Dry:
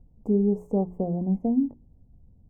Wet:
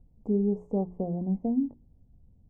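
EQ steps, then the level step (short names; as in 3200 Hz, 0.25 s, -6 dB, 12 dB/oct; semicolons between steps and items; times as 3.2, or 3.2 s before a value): air absorption 100 m; -3.5 dB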